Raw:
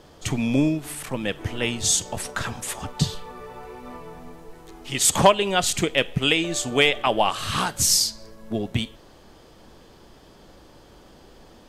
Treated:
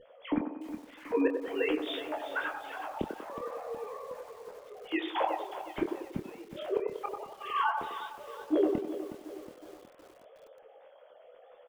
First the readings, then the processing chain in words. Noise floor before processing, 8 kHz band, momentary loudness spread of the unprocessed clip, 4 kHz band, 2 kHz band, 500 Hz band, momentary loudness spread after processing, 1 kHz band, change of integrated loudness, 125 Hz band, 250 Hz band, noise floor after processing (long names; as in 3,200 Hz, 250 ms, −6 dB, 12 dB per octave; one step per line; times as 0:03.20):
−50 dBFS, below −35 dB, 21 LU, −20.0 dB, −11.5 dB, −7.0 dB, 15 LU, −8.5 dB, −12.0 dB, −22.5 dB, −7.5 dB, −57 dBFS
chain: three sine waves on the formant tracks
spectral tilt −3 dB per octave
flanger 1.9 Hz, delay 9.7 ms, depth 7.1 ms, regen −3%
gate with flip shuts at −18 dBFS, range −30 dB
double-tracking delay 26 ms −7 dB
delay with a band-pass on its return 95 ms, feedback 46%, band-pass 630 Hz, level −4 dB
feedback echo at a low word length 366 ms, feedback 55%, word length 8 bits, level −11.5 dB